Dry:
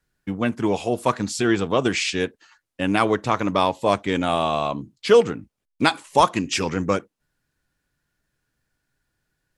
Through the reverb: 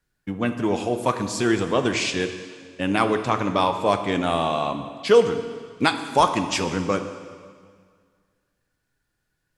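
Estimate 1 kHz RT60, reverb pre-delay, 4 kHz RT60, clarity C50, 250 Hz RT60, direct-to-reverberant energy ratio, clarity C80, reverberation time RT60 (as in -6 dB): 1.9 s, 5 ms, 1.7 s, 9.0 dB, 1.9 s, 7.5 dB, 10.5 dB, 1.9 s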